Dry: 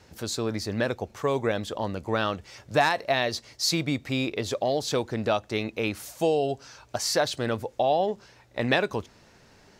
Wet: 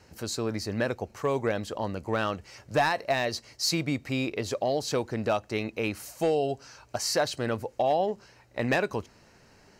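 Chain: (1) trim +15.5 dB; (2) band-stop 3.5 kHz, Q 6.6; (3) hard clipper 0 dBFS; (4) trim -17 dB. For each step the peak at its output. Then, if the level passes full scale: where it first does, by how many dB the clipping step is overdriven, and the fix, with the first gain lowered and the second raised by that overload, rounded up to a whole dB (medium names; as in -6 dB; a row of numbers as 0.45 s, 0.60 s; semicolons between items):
+8.5 dBFS, +7.5 dBFS, 0.0 dBFS, -17.0 dBFS; step 1, 7.5 dB; step 1 +7.5 dB, step 4 -9 dB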